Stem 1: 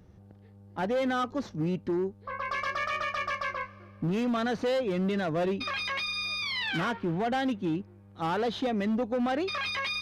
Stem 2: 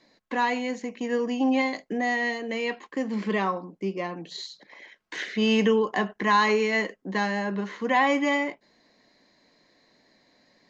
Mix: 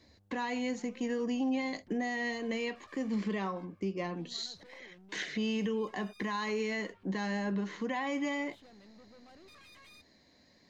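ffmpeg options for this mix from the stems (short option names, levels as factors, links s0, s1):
-filter_complex "[0:a]alimiter=level_in=2:limit=0.0631:level=0:latency=1:release=15,volume=0.501,aeval=exprs='(tanh(89.1*val(0)+0.5)-tanh(0.5))/89.1':c=same,volume=0.158[s0];[1:a]equalizer=f=1100:w=0.32:g=-6.5,acontrast=76,volume=0.531[s1];[s0][s1]amix=inputs=2:normalize=0,equalizer=f=72:t=o:w=0.6:g=12,alimiter=level_in=1.19:limit=0.0631:level=0:latency=1:release=234,volume=0.841"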